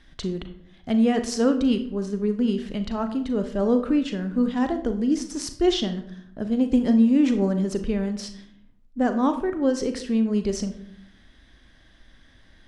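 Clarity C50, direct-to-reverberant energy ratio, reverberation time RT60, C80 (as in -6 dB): 11.0 dB, 8.0 dB, 0.65 s, 14.5 dB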